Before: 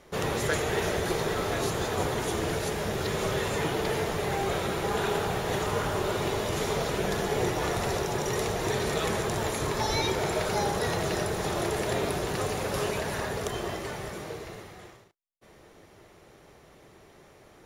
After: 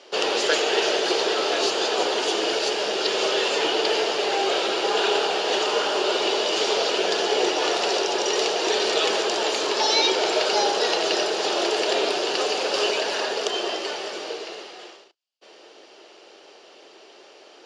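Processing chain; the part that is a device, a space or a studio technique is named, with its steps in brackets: phone speaker on a table (speaker cabinet 340–7100 Hz, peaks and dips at 1100 Hz -4 dB, 2000 Hz -6 dB, 2900 Hz +10 dB, 4700 Hz +10 dB); gain +7 dB

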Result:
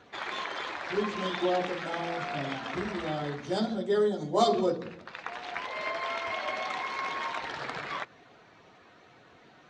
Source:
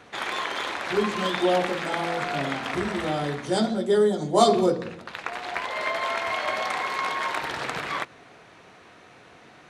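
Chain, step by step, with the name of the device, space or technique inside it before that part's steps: clip after many re-uploads (LPF 6600 Hz 24 dB/oct; bin magnitudes rounded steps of 15 dB); gain -5.5 dB

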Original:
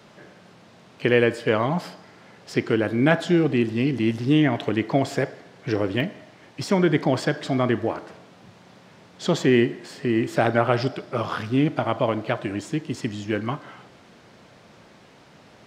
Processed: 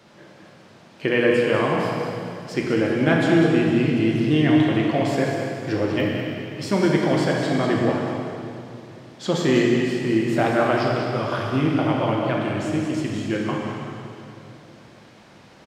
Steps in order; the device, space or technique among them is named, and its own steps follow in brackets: cave (echo 0.196 s -8.5 dB; reverb RT60 2.6 s, pre-delay 3 ms, DRR -1.5 dB); gain -2.5 dB

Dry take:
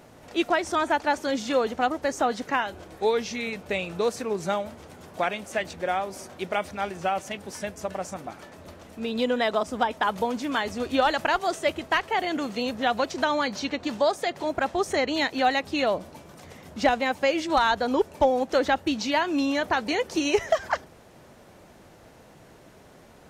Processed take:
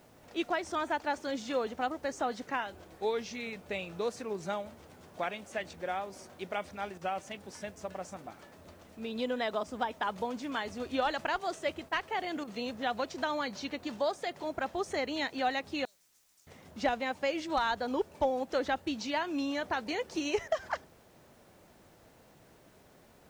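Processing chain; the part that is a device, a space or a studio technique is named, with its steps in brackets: 15.85–16.47 inverse Chebyshev high-pass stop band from 2900 Hz, stop band 40 dB; worn cassette (LPF 8800 Hz; wow and flutter 21 cents; level dips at 6.98/11.89/12.44/20.48, 33 ms -7 dB; white noise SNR 35 dB); gain -8.5 dB

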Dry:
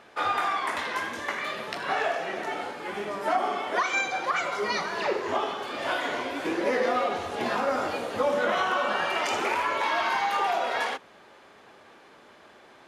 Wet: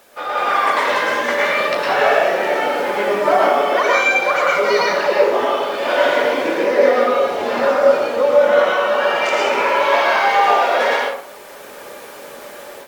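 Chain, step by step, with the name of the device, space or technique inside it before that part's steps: HPF 51 Hz 12 dB/oct; filmed off a television (BPF 190–7500 Hz; bell 550 Hz +7.5 dB 0.34 oct; reverb RT60 0.55 s, pre-delay 0.105 s, DRR -3.5 dB; white noise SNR 32 dB; AGC; gain -1 dB; AAC 96 kbps 48000 Hz)

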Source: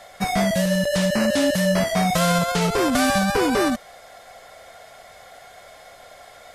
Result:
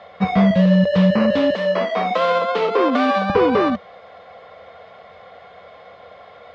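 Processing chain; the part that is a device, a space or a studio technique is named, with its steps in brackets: guitar cabinet (speaker cabinet 77–3600 Hz, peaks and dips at 85 Hz +9 dB, 190 Hz +9 dB, 480 Hz +10 dB, 1100 Hz +8 dB, 1600 Hz -3 dB); 1.55–3.3 steep high-pass 220 Hz 72 dB/oct

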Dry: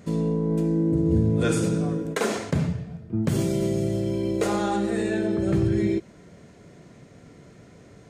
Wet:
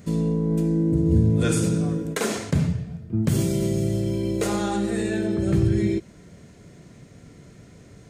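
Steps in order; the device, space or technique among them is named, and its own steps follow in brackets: smiley-face EQ (low shelf 110 Hz +5 dB; bell 730 Hz -4 dB 2.4 oct; high shelf 8100 Hz +6 dB); gain +1.5 dB

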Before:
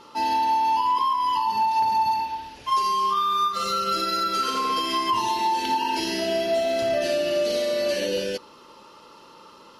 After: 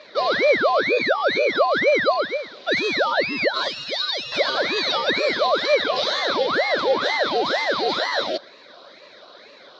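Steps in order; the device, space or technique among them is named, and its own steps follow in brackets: 3.68–4.32 passive tone stack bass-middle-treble 10-0-10; voice changer toy (ring modulator with a swept carrier 810 Hz, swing 85%, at 2.1 Hz; speaker cabinet 400–4500 Hz, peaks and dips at 570 Hz +8 dB, 840 Hz -8 dB, 1200 Hz -3 dB, 1800 Hz -4 dB, 2700 Hz -10 dB, 3900 Hz +10 dB); gain +7.5 dB

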